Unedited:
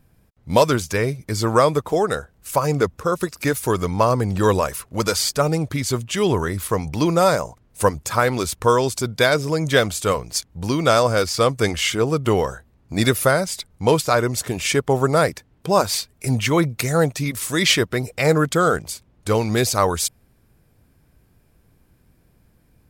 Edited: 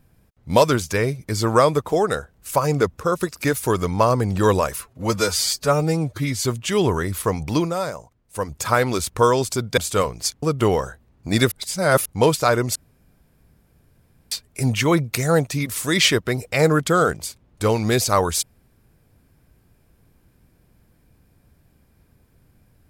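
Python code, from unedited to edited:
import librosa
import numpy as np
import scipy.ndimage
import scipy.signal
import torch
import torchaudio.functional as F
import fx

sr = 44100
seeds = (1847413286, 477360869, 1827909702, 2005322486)

y = fx.edit(x, sr, fx.stretch_span(start_s=4.81, length_s=1.09, factor=1.5),
    fx.fade_down_up(start_s=7.01, length_s=1.03, db=-9.0, fade_s=0.18),
    fx.cut(start_s=9.23, length_s=0.65),
    fx.cut(start_s=10.53, length_s=1.55),
    fx.reverse_span(start_s=13.17, length_s=0.54),
    fx.room_tone_fill(start_s=14.41, length_s=1.56), tone=tone)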